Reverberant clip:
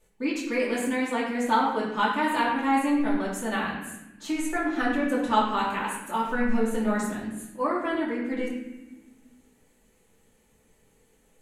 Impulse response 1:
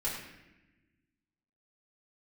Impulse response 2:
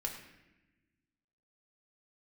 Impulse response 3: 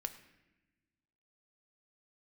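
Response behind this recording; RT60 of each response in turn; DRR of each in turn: 1; 1.0, 1.0, 1.0 seconds; −8.0, 0.5, 7.5 decibels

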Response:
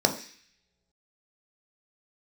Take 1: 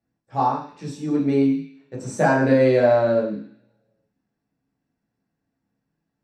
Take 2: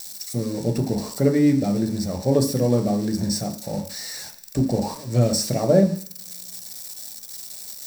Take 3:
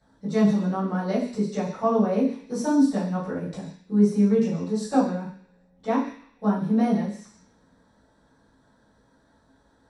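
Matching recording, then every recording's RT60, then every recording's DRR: 2; non-exponential decay, non-exponential decay, non-exponential decay; −5.0, 4.0, −13.0 decibels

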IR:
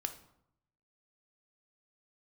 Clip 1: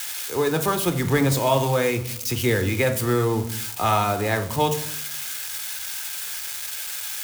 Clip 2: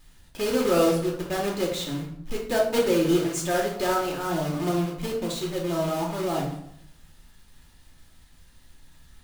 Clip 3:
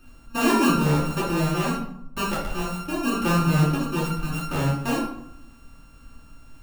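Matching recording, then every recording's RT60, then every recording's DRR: 1; 0.75, 0.75, 0.75 seconds; 6.5, −2.0, −9.5 decibels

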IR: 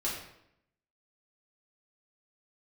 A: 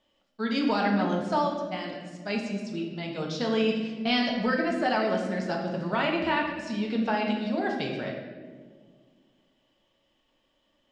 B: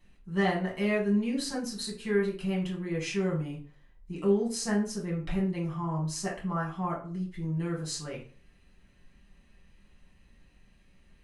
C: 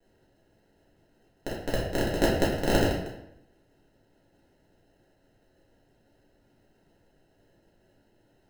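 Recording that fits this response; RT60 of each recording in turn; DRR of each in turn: C; 1.7, 0.40, 0.75 seconds; −0.5, −4.5, −7.0 decibels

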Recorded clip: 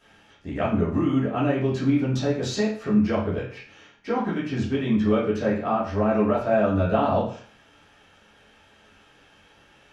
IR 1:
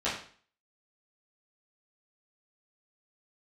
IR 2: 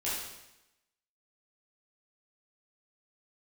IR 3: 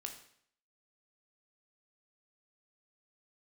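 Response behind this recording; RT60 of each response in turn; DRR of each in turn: 1; 0.45, 0.90, 0.65 seconds; −11.0, −9.5, 3.0 decibels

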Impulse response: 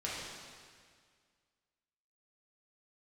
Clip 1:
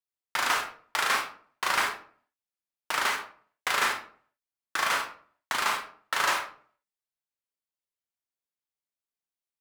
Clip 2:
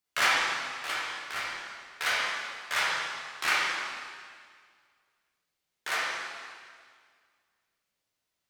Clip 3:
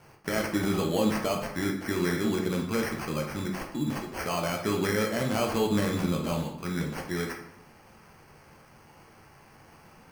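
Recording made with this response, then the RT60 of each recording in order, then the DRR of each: 2; 0.50, 1.9, 0.70 seconds; 2.5, −7.0, 0.5 decibels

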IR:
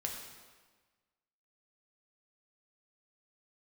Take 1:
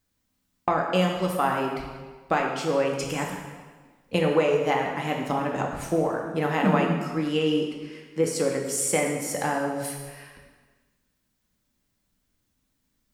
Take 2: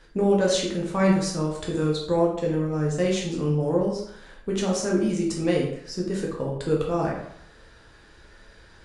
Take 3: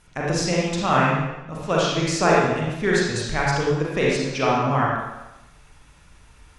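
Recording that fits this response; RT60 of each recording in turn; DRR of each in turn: 1; 1.4, 0.70, 1.0 seconds; 0.0, −3.0, −5.5 decibels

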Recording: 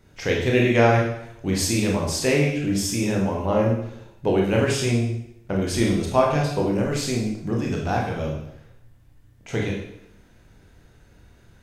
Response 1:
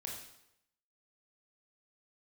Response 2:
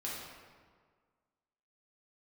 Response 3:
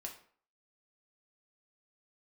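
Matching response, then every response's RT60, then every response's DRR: 1; 0.80, 1.7, 0.50 seconds; −2.0, −6.5, 0.5 decibels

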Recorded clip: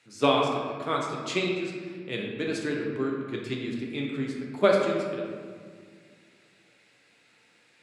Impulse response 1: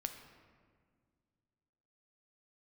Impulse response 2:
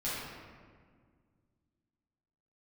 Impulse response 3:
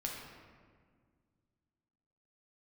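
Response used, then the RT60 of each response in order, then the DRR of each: 3; 1.9, 1.8, 1.8 seconds; 6.0, −10.5, −1.5 decibels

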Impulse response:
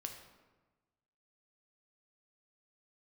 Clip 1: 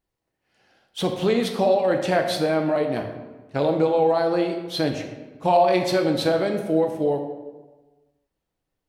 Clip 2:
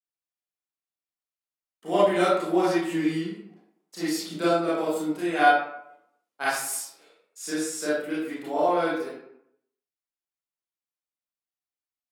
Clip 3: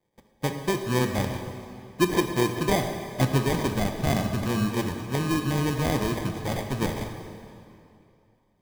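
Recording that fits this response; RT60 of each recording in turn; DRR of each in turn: 1; 1.2, 0.75, 2.6 seconds; 3.5, −10.5, 5.0 decibels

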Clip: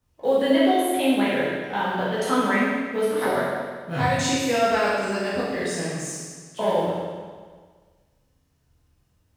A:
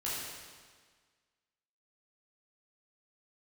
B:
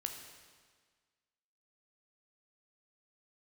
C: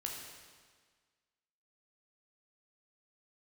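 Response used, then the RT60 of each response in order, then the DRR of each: A; 1.6, 1.6, 1.6 seconds; −8.5, 4.0, −0.5 decibels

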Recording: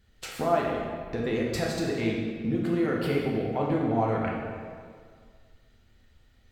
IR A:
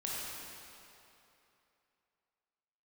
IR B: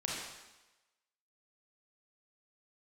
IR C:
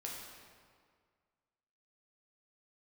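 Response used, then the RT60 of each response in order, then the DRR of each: C; 2.9, 1.1, 1.9 seconds; −6.0, −4.0, −3.0 decibels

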